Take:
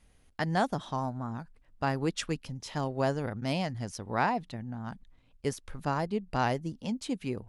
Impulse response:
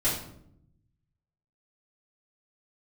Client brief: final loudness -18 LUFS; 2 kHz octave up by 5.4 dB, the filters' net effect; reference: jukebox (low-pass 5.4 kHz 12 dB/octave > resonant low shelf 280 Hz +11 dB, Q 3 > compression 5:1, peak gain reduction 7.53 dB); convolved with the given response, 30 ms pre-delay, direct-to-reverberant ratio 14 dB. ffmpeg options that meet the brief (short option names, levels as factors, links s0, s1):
-filter_complex "[0:a]equalizer=f=2000:t=o:g=7.5,asplit=2[s0][s1];[1:a]atrim=start_sample=2205,adelay=30[s2];[s1][s2]afir=irnorm=-1:irlink=0,volume=0.0631[s3];[s0][s3]amix=inputs=2:normalize=0,lowpass=5400,lowshelf=f=280:t=q:w=3:g=11,acompressor=threshold=0.112:ratio=5,volume=2.37"